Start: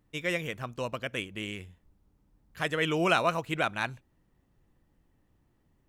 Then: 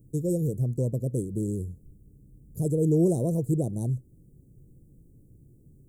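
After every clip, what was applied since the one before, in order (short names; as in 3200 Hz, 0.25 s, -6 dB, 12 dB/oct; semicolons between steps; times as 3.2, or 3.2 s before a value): elliptic band-stop 440–8100 Hz, stop band 60 dB; bell 130 Hz +9 dB 0.68 oct; in parallel at +2 dB: compressor, threshold -41 dBFS, peak gain reduction 15.5 dB; on the sum: gain +5 dB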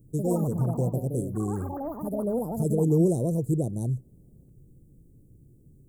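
echoes that change speed 84 ms, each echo +5 st, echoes 3, each echo -6 dB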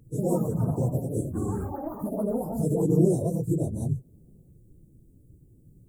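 phase scrambler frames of 50 ms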